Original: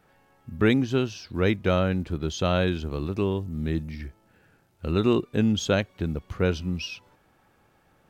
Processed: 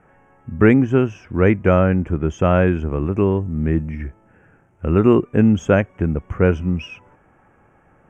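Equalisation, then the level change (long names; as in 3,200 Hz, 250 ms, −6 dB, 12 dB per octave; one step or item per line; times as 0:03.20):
Butterworth band-reject 4,200 Hz, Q 0.84
high-frequency loss of the air 100 metres
+8.5 dB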